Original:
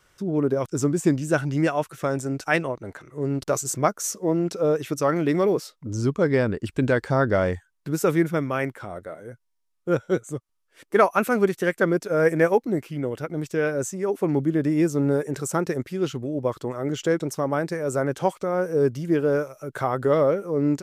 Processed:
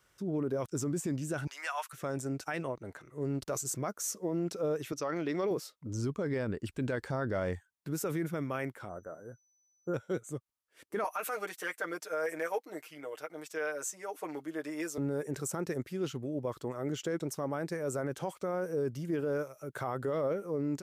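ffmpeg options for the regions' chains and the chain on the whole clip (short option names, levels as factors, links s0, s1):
-filter_complex "[0:a]asettb=1/sr,asplit=3[s0][s1][s2];[s0]atrim=end=1.474[s3];[s1]atrim=start=1.47:end=1.93,asetpts=PTS-STARTPTS,afade=t=in:d=0.004:c=qsin,afade=t=out:st=0.456:d=0.004:c=qsin,acontrast=37,highpass=f=930:w=0.5412,highpass=f=930:w=1.3066[s4];[s2]atrim=start=1.926[s5];[s3][s4]acrossfade=d=0.004:c1=hsin:c2=qsin[s6];[s6][s5]acrossfade=d=0.004:c1=qsin:c2=hsin,asettb=1/sr,asplit=3[s7][s8][s9];[s7]atrim=end=4.924[s10];[s8]atrim=start=4.92:end=5.51,asetpts=PTS-STARTPTS,afade=t=in:d=0.004:c=qsin,afade=t=out:st=0.586:d=0.004:c=qsin,highpass=f=290:p=1,highshelf=f=7100:t=q:w=1.5:g=-9[s11];[s9]atrim=start=5.506[s12];[s10][s11]acrossfade=d=0.004:c1=hsin:c2=qsin[s13];[s13][s12]acrossfade=d=0.004:c1=qsin:c2=hsin,asettb=1/sr,asplit=3[s14][s15][s16];[s14]atrim=end=8.894[s17];[s15]atrim=start=8.89:end=9.94,asetpts=PTS-STARTPTS,afade=t=in:d=0.004:c=qsin,afade=t=out:st=1.046:d=0.004:c=qsin,equalizer=f=9400:w=3:g=-14,aeval=exprs='val(0)+0.00126*sin(2*PI*6000*n/s)':c=same,asuperstop=centerf=3300:order=12:qfactor=0.71[s18];[s16]atrim=start=9.936[s19];[s17][s18]acrossfade=d=0.004:c1=hsin:c2=qsin[s20];[s20][s19]acrossfade=d=0.004:c1=qsin:c2=hsin,asettb=1/sr,asplit=3[s21][s22][s23];[s21]atrim=end=11.044[s24];[s22]atrim=start=11.04:end=14.98,asetpts=PTS-STARTPTS,afade=t=in:d=0.004:c=qsin,afade=t=out:st=3.936:d=0.004:c=qsin,highpass=680,aecho=1:1:6.5:0.8,atrim=end_sample=173754[s25];[s23]atrim=start=14.976[s26];[s24][s25]acrossfade=d=0.004:c1=hsin:c2=qsin[s27];[s27][s26]acrossfade=d=0.004:c1=qsin:c2=hsin,highshelf=f=10000:g=5,alimiter=limit=0.141:level=0:latency=1:release=21,highpass=41,volume=0.398"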